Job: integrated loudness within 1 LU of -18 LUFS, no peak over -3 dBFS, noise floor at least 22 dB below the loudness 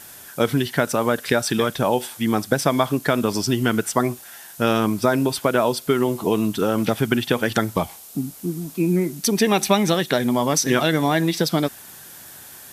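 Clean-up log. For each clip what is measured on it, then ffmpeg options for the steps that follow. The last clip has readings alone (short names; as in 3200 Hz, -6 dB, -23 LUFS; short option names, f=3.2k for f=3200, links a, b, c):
noise floor -42 dBFS; noise floor target -43 dBFS; loudness -21.0 LUFS; peak -3.0 dBFS; loudness target -18.0 LUFS
-> -af "afftdn=nr=6:nf=-42"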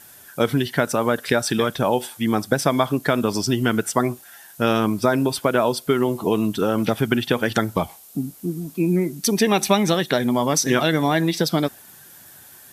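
noise floor -46 dBFS; loudness -21.0 LUFS; peak -3.0 dBFS; loudness target -18.0 LUFS
-> -af "volume=3dB,alimiter=limit=-3dB:level=0:latency=1"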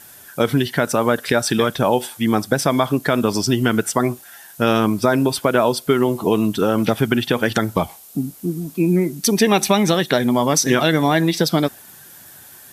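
loudness -18.5 LUFS; peak -3.0 dBFS; noise floor -43 dBFS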